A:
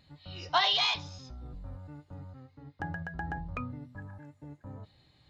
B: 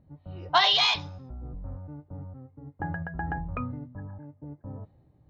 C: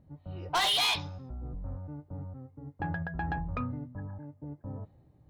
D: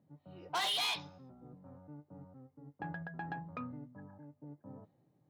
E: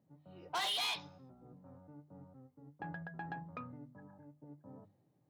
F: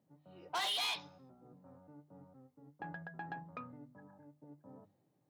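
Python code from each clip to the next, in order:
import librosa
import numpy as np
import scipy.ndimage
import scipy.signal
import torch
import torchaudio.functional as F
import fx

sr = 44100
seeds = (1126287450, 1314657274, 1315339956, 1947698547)

y1 = fx.env_lowpass(x, sr, base_hz=550.0, full_db=-24.0)
y1 = F.gain(torch.from_numpy(y1), 5.0).numpy()
y2 = 10.0 ** (-23.5 / 20.0) * np.tanh(y1 / 10.0 ** (-23.5 / 20.0))
y3 = scipy.signal.sosfilt(scipy.signal.butter(4, 140.0, 'highpass', fs=sr, output='sos'), y2)
y3 = F.gain(torch.from_numpy(y3), -7.0).numpy()
y4 = fx.hum_notches(y3, sr, base_hz=50, count=6)
y4 = F.gain(torch.from_numpy(y4), -2.0).numpy()
y5 = fx.highpass(y4, sr, hz=180.0, slope=6)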